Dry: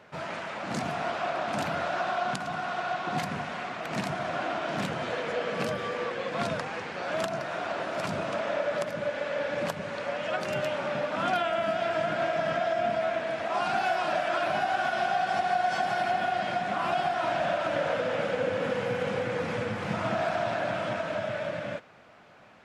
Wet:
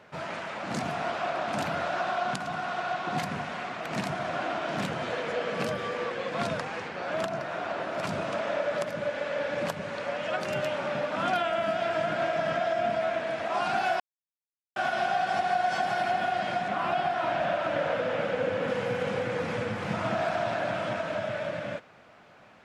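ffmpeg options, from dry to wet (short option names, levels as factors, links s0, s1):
-filter_complex "[0:a]asettb=1/sr,asplit=3[s0][s1][s2];[s0]atrim=end=6.884[s3];[s1]atrim=start=6.88:end=8.03,asetpts=PTS-STARTPTS,afade=t=in:d=0.004:c=qsin,afade=t=out:st=1.146:d=0.004:c=qsin,highshelf=f=3900:g=-5.5[s4];[s2]atrim=start=8.026[s5];[s3][s4]acrossfade=d=0.004:c1=hsin:c2=qsin[s6];[s6][s5]acrossfade=d=0.004:c1=qsin:c2=hsin,asettb=1/sr,asplit=3[s7][s8][s9];[s7]atrim=end=16.684[s10];[s8]atrim=start=16.68:end=18.68,asetpts=PTS-STARTPTS,afade=t=in:d=0.004:c=qsin,afade=t=out:st=1.996:d=0.004:c=qsin,acrossover=split=4000[s11][s12];[s12]acompressor=threshold=0.00158:ratio=4:attack=1:release=60[s13];[s11][s13]amix=inputs=2:normalize=0[s14];[s9]atrim=start=18.676[s15];[s10][s14]acrossfade=d=0.004:c1=hsin:c2=qsin[s16];[s16][s15]acrossfade=d=0.004:c1=qsin:c2=hsin,asplit=3[s17][s18][s19];[s17]atrim=end=14,asetpts=PTS-STARTPTS,afade=t=out:st=13.996:d=0.004:c=hsin[s20];[s18]atrim=start=14:end=14.76,asetpts=PTS-STARTPTS,volume=0[s21];[s19]atrim=start=14.76,asetpts=PTS-STARTPTS,afade=t=in:d=0.004:c=hsin[s22];[s20][s21][s22]concat=n=3:v=0:a=1"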